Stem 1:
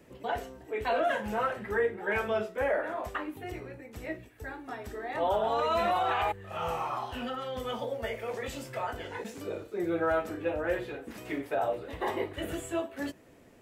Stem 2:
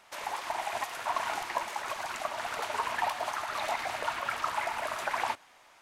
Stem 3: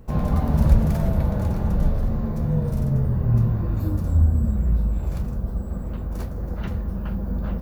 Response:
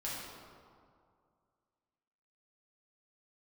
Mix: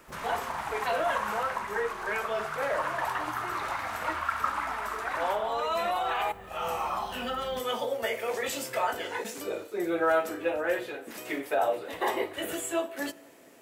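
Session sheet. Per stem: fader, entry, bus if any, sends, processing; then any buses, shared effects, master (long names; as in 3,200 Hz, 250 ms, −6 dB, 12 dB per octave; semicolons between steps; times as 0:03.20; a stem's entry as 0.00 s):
+0.5 dB, 0.00 s, send −22 dB, high-pass filter 220 Hz 6 dB per octave
−12.5 dB, 0.00 s, send −3 dB, parametric band 1,300 Hz +13.5 dB 1.3 octaves
−17.0 dB, 0.00 s, no send, downward compressor, threshold −23 dBFS, peak gain reduction 14 dB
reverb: on, RT60 2.2 s, pre-delay 5 ms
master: high-shelf EQ 6,200 Hz +8 dB; speech leveller 2 s; low-shelf EQ 160 Hz −11.5 dB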